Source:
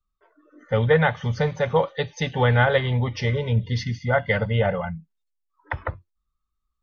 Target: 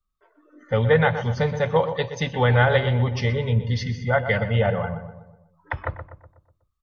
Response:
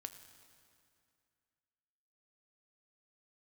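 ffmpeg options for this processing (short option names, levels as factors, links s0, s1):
-filter_complex "[0:a]asplit=2[s0][s1];[s1]adelay=123,lowpass=f=1700:p=1,volume=0.355,asplit=2[s2][s3];[s3]adelay=123,lowpass=f=1700:p=1,volume=0.51,asplit=2[s4][s5];[s5]adelay=123,lowpass=f=1700:p=1,volume=0.51,asplit=2[s6][s7];[s7]adelay=123,lowpass=f=1700:p=1,volume=0.51,asplit=2[s8][s9];[s9]adelay=123,lowpass=f=1700:p=1,volume=0.51,asplit=2[s10][s11];[s11]adelay=123,lowpass=f=1700:p=1,volume=0.51[s12];[s0][s2][s4][s6][s8][s10][s12]amix=inputs=7:normalize=0"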